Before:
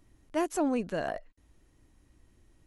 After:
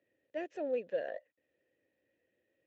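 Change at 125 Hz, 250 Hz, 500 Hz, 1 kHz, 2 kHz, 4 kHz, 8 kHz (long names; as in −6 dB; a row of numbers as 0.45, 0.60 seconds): below −20 dB, −14.5 dB, −3.0 dB, −13.5 dB, −7.5 dB, below −10 dB, below −25 dB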